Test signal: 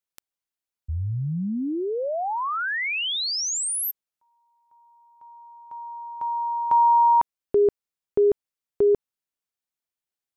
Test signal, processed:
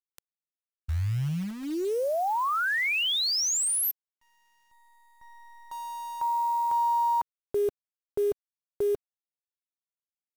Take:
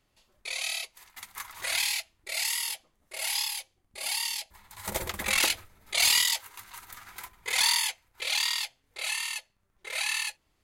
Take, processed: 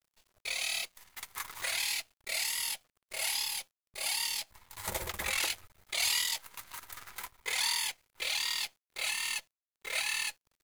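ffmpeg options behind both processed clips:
-af "equalizer=f=240:t=o:w=0.47:g=-13,alimiter=limit=-21.5dB:level=0:latency=1:release=199,acrusher=bits=8:dc=4:mix=0:aa=0.000001"

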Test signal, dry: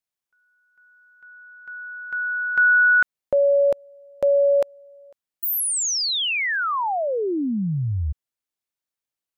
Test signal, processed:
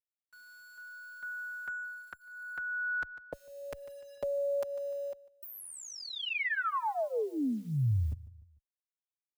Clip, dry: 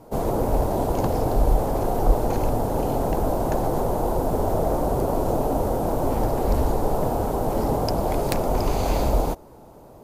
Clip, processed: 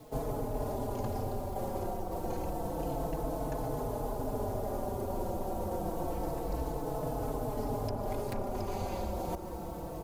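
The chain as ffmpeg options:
-filter_complex "[0:a]areverse,acompressor=threshold=-31dB:ratio=10:attack=1.7:release=504:knee=1:detection=rms,areverse,lowshelf=f=110:g=5,acrusher=bits=10:mix=0:aa=0.000001,asplit=2[a][b];[b]aecho=0:1:149|298|447:0.0891|0.0303|0.0103[c];[a][c]amix=inputs=2:normalize=0,acrossover=split=92|2300[d][e][f];[d]acompressor=threshold=-44dB:ratio=4[g];[e]acompressor=threshold=-38dB:ratio=4[h];[f]acompressor=threshold=-56dB:ratio=4[i];[g][h][i]amix=inputs=3:normalize=0,asplit=2[j][k];[k]adelay=4.2,afreqshift=-0.28[l];[j][l]amix=inputs=2:normalize=1,volume=8.5dB"

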